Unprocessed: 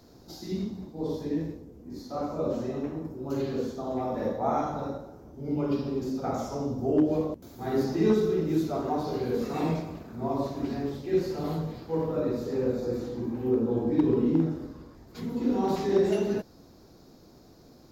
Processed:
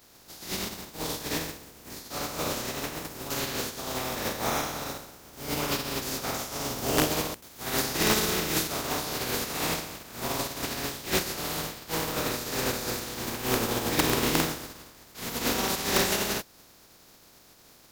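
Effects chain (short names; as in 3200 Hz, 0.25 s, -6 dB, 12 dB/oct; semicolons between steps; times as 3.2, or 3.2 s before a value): spectral contrast lowered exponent 0.32; gain -1.5 dB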